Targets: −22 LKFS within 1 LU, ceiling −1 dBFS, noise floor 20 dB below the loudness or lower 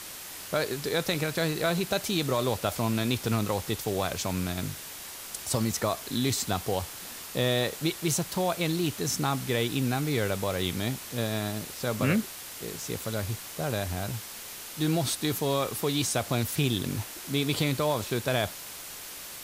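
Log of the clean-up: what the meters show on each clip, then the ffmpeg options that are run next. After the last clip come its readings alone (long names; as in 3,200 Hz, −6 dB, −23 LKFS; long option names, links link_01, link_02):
background noise floor −42 dBFS; target noise floor −50 dBFS; integrated loudness −29.5 LKFS; sample peak −12.5 dBFS; target loudness −22.0 LKFS
→ -af "afftdn=noise_reduction=8:noise_floor=-42"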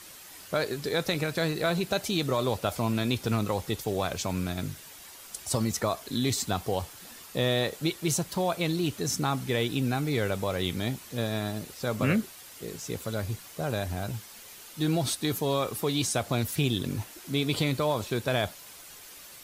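background noise floor −48 dBFS; target noise floor −50 dBFS
→ -af "afftdn=noise_reduction=6:noise_floor=-48"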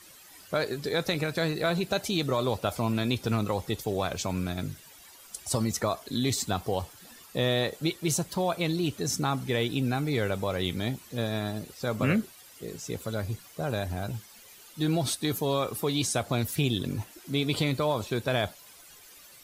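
background noise floor −52 dBFS; integrated loudness −29.5 LKFS; sample peak −13.5 dBFS; target loudness −22.0 LKFS
→ -af "volume=7.5dB"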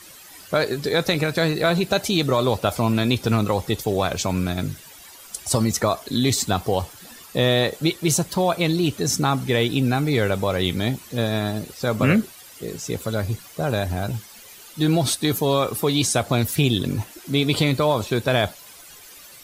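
integrated loudness −22.0 LKFS; sample peak −6.0 dBFS; background noise floor −45 dBFS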